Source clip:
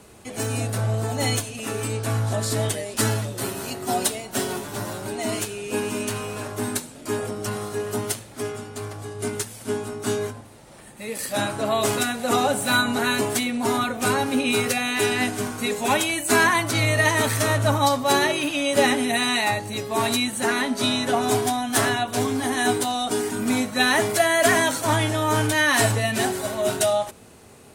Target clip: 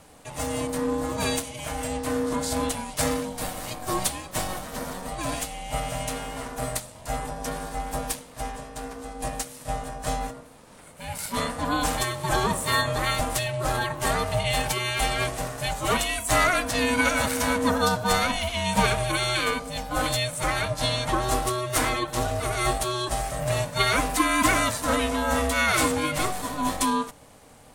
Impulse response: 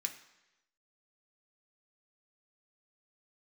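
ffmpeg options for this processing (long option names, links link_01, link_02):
-af "aeval=exprs='val(0)*sin(2*PI*370*n/s)':channel_layout=same"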